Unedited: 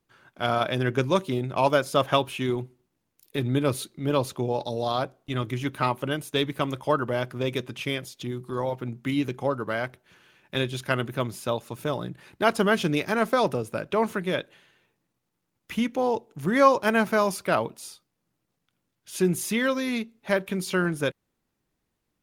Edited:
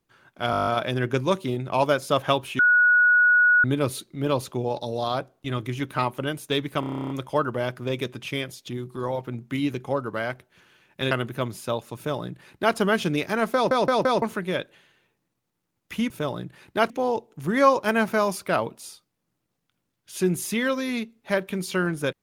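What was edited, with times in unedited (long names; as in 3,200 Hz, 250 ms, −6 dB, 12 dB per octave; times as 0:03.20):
0:00.51: stutter 0.02 s, 9 plays
0:02.43–0:03.48: beep over 1,460 Hz −14 dBFS
0:06.64: stutter 0.03 s, 11 plays
0:10.65–0:10.90: remove
0:11.75–0:12.55: duplicate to 0:15.89
0:13.33: stutter in place 0.17 s, 4 plays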